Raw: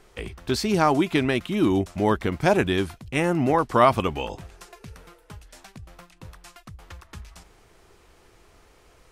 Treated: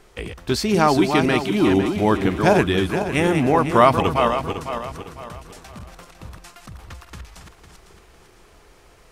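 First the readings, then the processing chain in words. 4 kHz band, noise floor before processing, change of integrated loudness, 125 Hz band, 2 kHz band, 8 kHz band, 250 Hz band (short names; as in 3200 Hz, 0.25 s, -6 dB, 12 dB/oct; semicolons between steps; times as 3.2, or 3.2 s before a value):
+4.5 dB, -57 dBFS, +4.0 dB, +4.0 dB, +4.5 dB, +4.5 dB, +4.5 dB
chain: regenerating reverse delay 0.252 s, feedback 59%, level -6 dB; gain +3 dB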